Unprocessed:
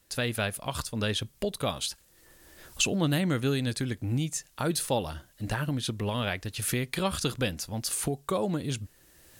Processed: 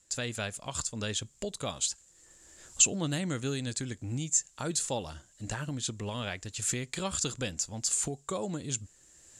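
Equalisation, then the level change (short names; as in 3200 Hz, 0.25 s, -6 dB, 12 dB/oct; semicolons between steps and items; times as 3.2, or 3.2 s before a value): synth low-pass 7300 Hz, resonance Q 9; -6.0 dB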